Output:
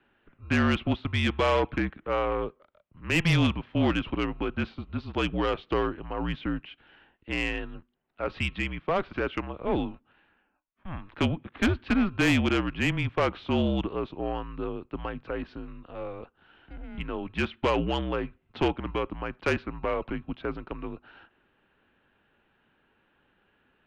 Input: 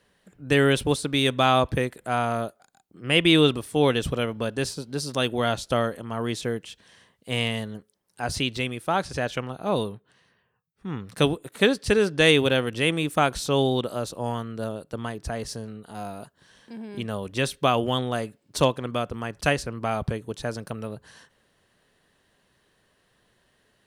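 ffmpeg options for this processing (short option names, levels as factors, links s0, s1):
-filter_complex "[0:a]acrossover=split=120|1400[s0][s1][s2];[s0]acrusher=samples=32:mix=1:aa=0.000001[s3];[s3][s1][s2]amix=inputs=3:normalize=0,highpass=f=220:t=q:w=0.5412,highpass=f=220:t=q:w=1.307,lowpass=f=3200:t=q:w=0.5176,lowpass=f=3200:t=q:w=0.7071,lowpass=f=3200:t=q:w=1.932,afreqshift=-180,asoftclip=type=tanh:threshold=0.133"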